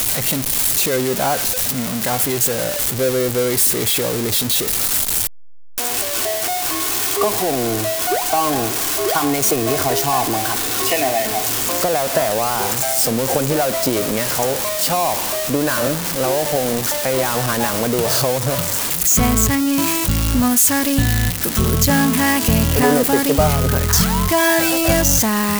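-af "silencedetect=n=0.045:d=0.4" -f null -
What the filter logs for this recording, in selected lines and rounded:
silence_start: 5.27
silence_end: 5.78 | silence_duration: 0.51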